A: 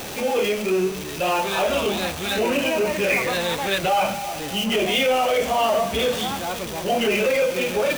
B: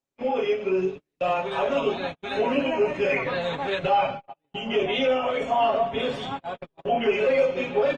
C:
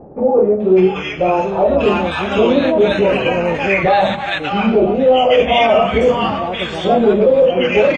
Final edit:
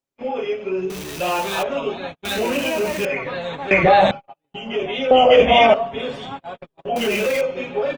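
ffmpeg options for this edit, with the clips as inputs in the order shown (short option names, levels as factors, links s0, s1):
-filter_complex "[0:a]asplit=3[s0][s1][s2];[2:a]asplit=2[s3][s4];[1:a]asplit=6[s5][s6][s7][s8][s9][s10];[s5]atrim=end=0.902[s11];[s0]atrim=start=0.898:end=1.632[s12];[s6]atrim=start=1.628:end=2.252[s13];[s1]atrim=start=2.248:end=3.052[s14];[s7]atrim=start=3.048:end=3.712[s15];[s3]atrim=start=3.708:end=4.112[s16];[s8]atrim=start=4.108:end=5.112[s17];[s4]atrim=start=5.108:end=5.742[s18];[s9]atrim=start=5.738:end=6.962[s19];[s2]atrim=start=6.958:end=7.412[s20];[s10]atrim=start=7.408[s21];[s11][s12]acrossfade=d=0.004:c1=hsin:c2=hsin[s22];[s22][s13]acrossfade=d=0.004:c1=hsin:c2=hsin[s23];[s23][s14]acrossfade=d=0.004:c1=hsin:c2=hsin[s24];[s24][s15]acrossfade=d=0.004:c1=hsin:c2=hsin[s25];[s25][s16]acrossfade=d=0.004:c1=hsin:c2=hsin[s26];[s26][s17]acrossfade=d=0.004:c1=hsin:c2=hsin[s27];[s27][s18]acrossfade=d=0.004:c1=hsin:c2=hsin[s28];[s28][s19]acrossfade=d=0.004:c1=hsin:c2=hsin[s29];[s29][s20]acrossfade=d=0.004:c1=hsin:c2=hsin[s30];[s30][s21]acrossfade=d=0.004:c1=hsin:c2=hsin"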